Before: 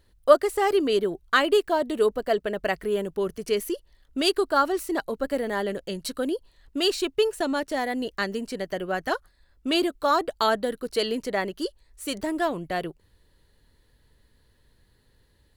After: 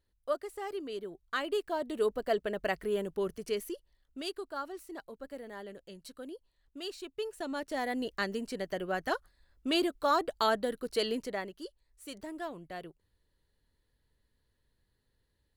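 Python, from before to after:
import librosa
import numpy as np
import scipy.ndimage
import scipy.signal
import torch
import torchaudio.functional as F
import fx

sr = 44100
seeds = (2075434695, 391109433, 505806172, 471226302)

y = fx.gain(x, sr, db=fx.line((0.97, -16.5), (2.25, -6.0), (3.27, -6.0), (4.42, -17.0), (7.04, -17.0), (7.89, -5.5), (11.16, -5.5), (11.57, -14.0)))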